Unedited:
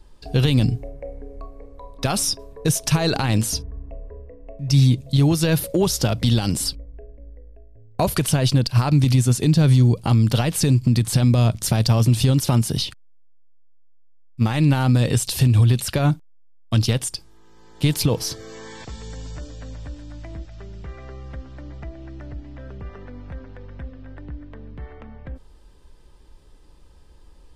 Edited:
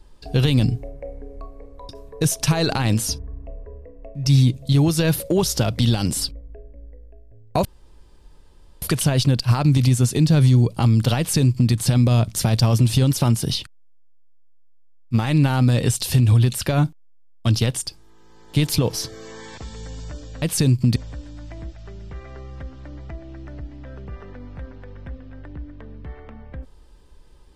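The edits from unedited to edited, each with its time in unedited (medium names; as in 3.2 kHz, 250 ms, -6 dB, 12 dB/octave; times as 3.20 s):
1.89–2.33 s: delete
8.09 s: insert room tone 1.17 s
10.45–10.99 s: copy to 19.69 s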